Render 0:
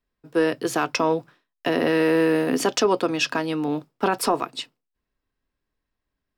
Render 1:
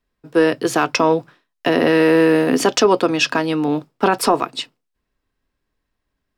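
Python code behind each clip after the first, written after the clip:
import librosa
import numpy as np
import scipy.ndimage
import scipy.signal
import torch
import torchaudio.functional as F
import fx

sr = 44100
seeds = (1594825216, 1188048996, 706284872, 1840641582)

y = fx.high_shelf(x, sr, hz=12000.0, db=-6.0)
y = y * librosa.db_to_amplitude(6.0)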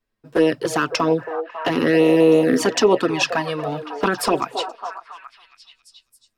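y = fx.echo_stepped(x, sr, ms=274, hz=580.0, octaves=0.7, feedback_pct=70, wet_db=-6)
y = fx.env_flanger(y, sr, rest_ms=9.2, full_db=-9.0)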